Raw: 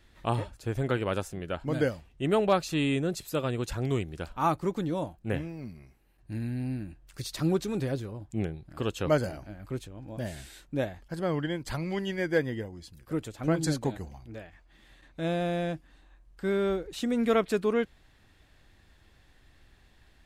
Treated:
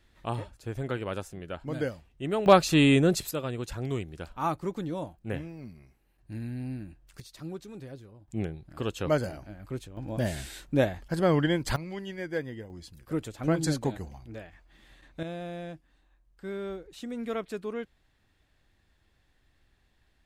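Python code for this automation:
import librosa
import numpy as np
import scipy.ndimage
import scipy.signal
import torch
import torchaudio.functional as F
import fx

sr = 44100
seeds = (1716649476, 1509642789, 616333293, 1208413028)

y = fx.gain(x, sr, db=fx.steps((0.0, -4.0), (2.46, 7.0), (3.31, -3.0), (7.2, -12.5), (8.28, -1.0), (9.97, 6.0), (11.76, -6.0), (12.7, 0.5), (15.23, -8.5)))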